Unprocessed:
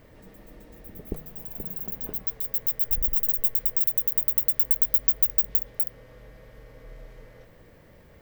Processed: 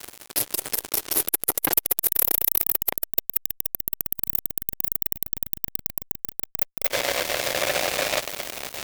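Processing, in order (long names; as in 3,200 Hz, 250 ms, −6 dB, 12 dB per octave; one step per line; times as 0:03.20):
gliding playback speed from 61% → 125%
high-pass filter 210 Hz 12 dB per octave
spectral tilt +3.5 dB per octave
reversed playback
downward compressor 20 to 1, threshold −23 dBFS, peak gain reduction 19.5 dB
reversed playback
high-shelf EQ 7,000 Hz −9 dB
phaser with its sweep stopped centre 500 Hz, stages 4
fuzz pedal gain 52 dB, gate −54 dBFS
saturating transformer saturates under 2,500 Hz
level +4 dB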